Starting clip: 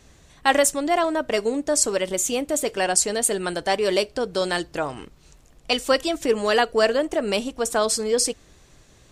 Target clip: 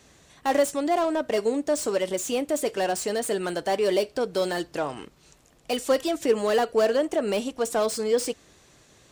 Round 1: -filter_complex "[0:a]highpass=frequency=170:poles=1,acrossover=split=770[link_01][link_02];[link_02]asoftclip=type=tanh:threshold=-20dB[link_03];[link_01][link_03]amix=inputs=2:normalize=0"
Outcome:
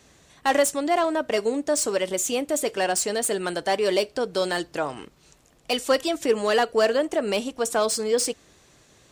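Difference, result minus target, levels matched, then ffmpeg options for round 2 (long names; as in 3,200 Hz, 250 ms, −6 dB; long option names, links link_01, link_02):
soft clipping: distortion −6 dB
-filter_complex "[0:a]highpass=frequency=170:poles=1,acrossover=split=770[link_01][link_02];[link_02]asoftclip=type=tanh:threshold=-30dB[link_03];[link_01][link_03]amix=inputs=2:normalize=0"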